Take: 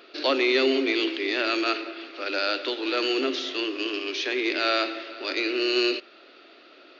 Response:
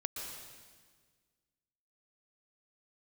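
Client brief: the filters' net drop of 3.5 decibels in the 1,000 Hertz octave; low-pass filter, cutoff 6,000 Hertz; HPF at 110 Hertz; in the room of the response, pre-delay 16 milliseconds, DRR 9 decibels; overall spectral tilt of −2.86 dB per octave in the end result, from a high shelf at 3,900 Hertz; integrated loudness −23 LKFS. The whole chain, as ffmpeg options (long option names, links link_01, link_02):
-filter_complex "[0:a]highpass=110,lowpass=6000,equalizer=frequency=1000:width_type=o:gain=-6.5,highshelf=frequency=3900:gain=7,asplit=2[link_01][link_02];[1:a]atrim=start_sample=2205,adelay=16[link_03];[link_02][link_03]afir=irnorm=-1:irlink=0,volume=-10dB[link_04];[link_01][link_04]amix=inputs=2:normalize=0,volume=1.5dB"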